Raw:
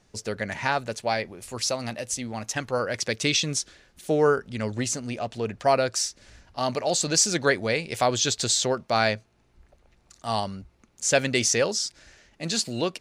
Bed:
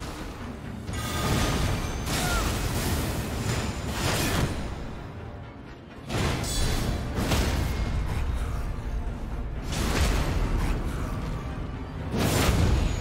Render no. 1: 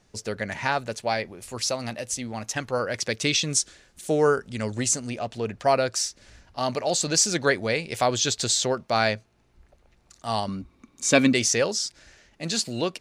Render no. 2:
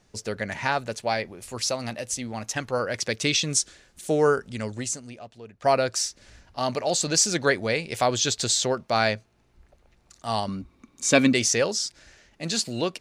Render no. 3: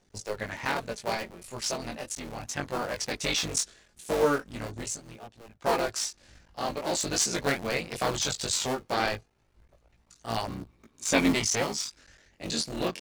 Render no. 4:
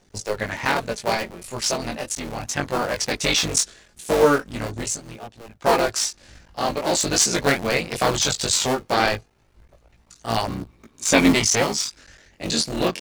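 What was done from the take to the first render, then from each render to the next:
3.5–5.1 bell 8100 Hz +7.5 dB 0.91 oct; 10.48–11.33 small resonant body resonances 260/1100/2300/3700 Hz, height 13 dB, ringing for 35 ms
4.47–5.62 fade out quadratic, to -15.5 dB
cycle switcher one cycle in 3, muted; chorus voices 2, 0.19 Hz, delay 20 ms, depth 2.7 ms
gain +8 dB; limiter -2 dBFS, peak gain reduction 1 dB

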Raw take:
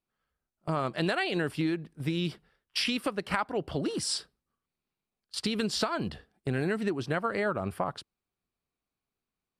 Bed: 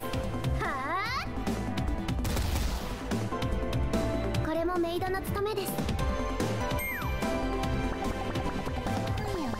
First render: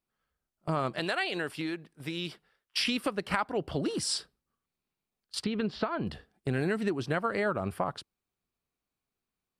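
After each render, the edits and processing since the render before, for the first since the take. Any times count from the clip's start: 0.99–2.77 low shelf 300 Hz -12 dB; 5.44–6.07 air absorption 350 m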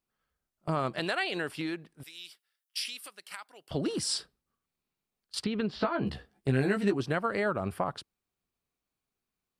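2.03–3.71 differentiator; 5.8–7.01 doubler 15 ms -3 dB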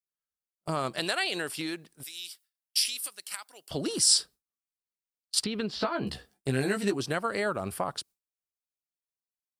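gate with hold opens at -55 dBFS; tone controls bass -3 dB, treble +13 dB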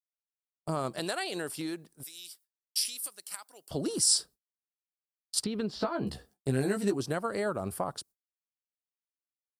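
bell 2600 Hz -9 dB 1.9 oct; gate with hold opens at -52 dBFS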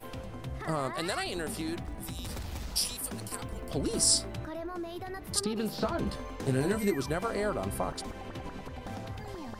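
add bed -9 dB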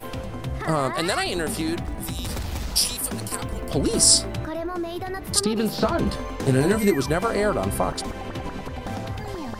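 gain +9 dB

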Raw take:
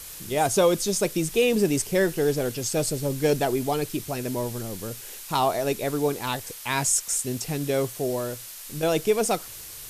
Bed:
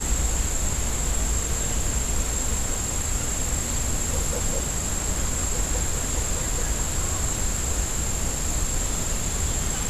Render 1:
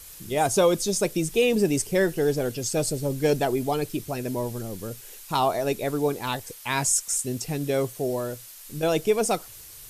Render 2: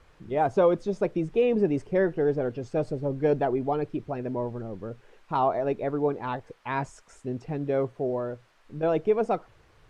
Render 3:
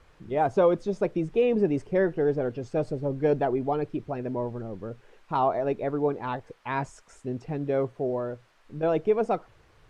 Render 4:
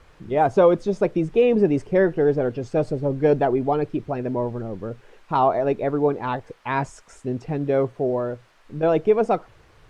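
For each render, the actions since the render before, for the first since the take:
denoiser 6 dB, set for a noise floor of -41 dBFS
LPF 1400 Hz 12 dB/oct; low shelf 250 Hz -4 dB
nothing audible
gain +5.5 dB

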